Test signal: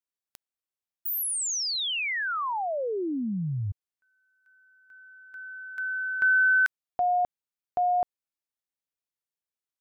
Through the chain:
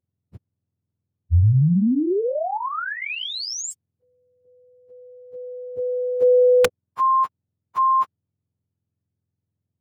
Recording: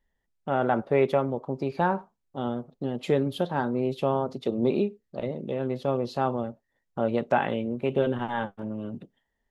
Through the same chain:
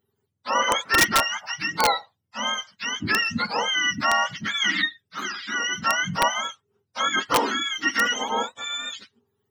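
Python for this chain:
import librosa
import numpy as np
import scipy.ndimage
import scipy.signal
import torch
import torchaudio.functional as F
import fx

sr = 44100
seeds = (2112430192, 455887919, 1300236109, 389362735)

y = fx.octave_mirror(x, sr, pivot_hz=870.0)
y = (np.mod(10.0 ** (16.5 / 20.0) * y + 1.0, 2.0) - 1.0) / 10.0 ** (16.5 / 20.0)
y = y * librosa.db_to_amplitude(6.5)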